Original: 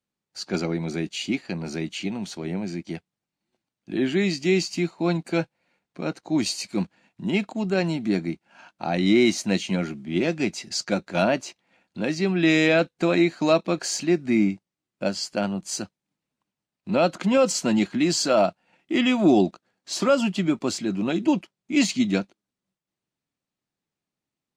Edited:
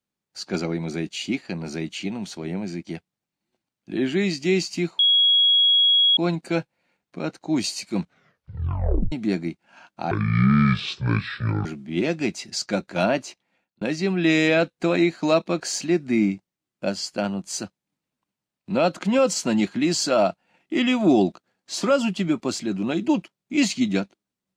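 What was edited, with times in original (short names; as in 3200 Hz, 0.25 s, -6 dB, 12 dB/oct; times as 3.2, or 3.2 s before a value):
4.99 add tone 3320 Hz -14 dBFS 1.18 s
6.8 tape stop 1.14 s
8.93–9.84 speed 59%
11.42–12 fade out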